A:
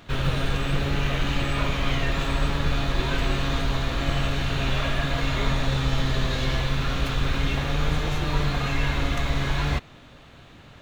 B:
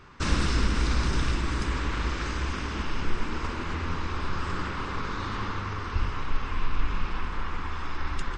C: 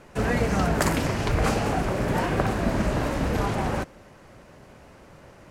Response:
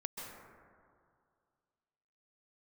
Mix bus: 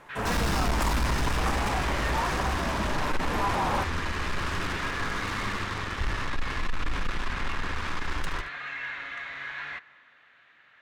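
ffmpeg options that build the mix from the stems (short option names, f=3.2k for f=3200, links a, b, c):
-filter_complex "[0:a]bandpass=f=1.8k:t=q:w=3.2:csg=0,volume=0dB,asplit=2[a][b];[b]volume=-17dB[c];[1:a]acrusher=bits=4:mix=0:aa=0.5,adelay=50,volume=0dB,asplit=2[d][e];[e]volume=-12.5dB[f];[2:a]equalizer=f=1k:t=o:w=0.9:g=14,dynaudnorm=f=140:g=17:m=11.5dB,highshelf=f=8.7k:g=8.5,volume=-8dB[g];[3:a]atrim=start_sample=2205[h];[c][h]afir=irnorm=-1:irlink=0[i];[f]aecho=0:1:75:1[j];[a][d][g][i][j]amix=inputs=5:normalize=0,asoftclip=type=tanh:threshold=-20dB"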